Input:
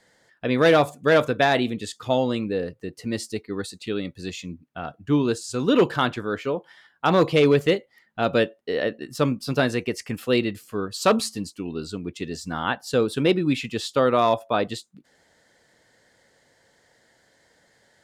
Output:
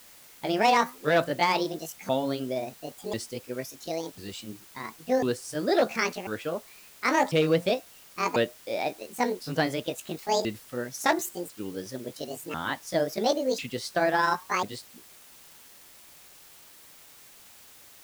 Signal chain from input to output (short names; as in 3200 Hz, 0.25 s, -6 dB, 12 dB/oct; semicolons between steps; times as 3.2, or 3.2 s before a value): repeated pitch sweeps +10.5 st, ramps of 1.045 s; requantised 8-bit, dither triangular; gain -4 dB